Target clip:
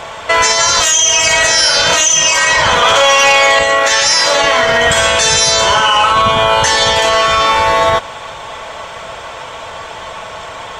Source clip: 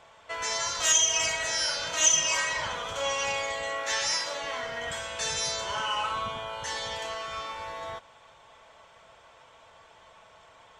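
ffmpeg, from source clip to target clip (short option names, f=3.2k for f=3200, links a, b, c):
-filter_complex "[0:a]acompressor=threshold=-29dB:ratio=6,asettb=1/sr,asplit=3[a][b][c];[a]atrim=end=2.824[d];[b]atrim=start=2.82:end=3.59,asetpts=PTS-STARTPTS,afade=t=in:d=0.004:c=qsin,afade=t=out:st=0.766:d=0.004:c=qsin,asplit=2[e][f];[f]highpass=f=720:p=1,volume=16dB,asoftclip=type=tanh:threshold=-14.5dB[g];[e][g]amix=inputs=2:normalize=0,lowpass=f=4.1k:p=1,volume=-6dB[h];[c]atrim=start=3.586[i];[d][h]acrossfade=d=0.004:c1=hsin:c2=qsin[j];[j][i]acrossfade=d=0.004:c1=qsin:c2=hsin,alimiter=level_in=28.5dB:limit=-1dB:release=50:level=0:latency=1,volume=-1dB"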